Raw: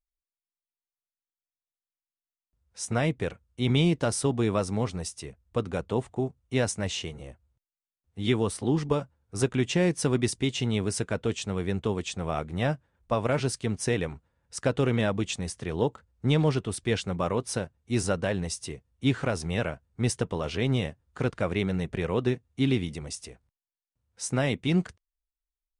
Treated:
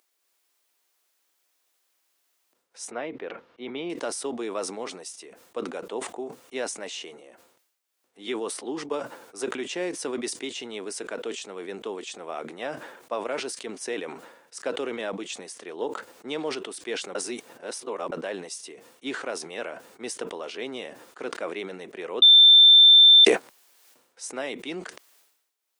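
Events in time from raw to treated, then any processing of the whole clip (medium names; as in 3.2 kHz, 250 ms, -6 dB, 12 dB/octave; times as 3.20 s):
2.91–3.90 s: distance through air 310 m
17.15–18.12 s: reverse
22.22–23.25 s: bleep 3.56 kHz -6 dBFS
whole clip: upward compressor, threshold -45 dBFS; high-pass 310 Hz 24 dB/octave; decay stretcher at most 65 dB/s; trim -3.5 dB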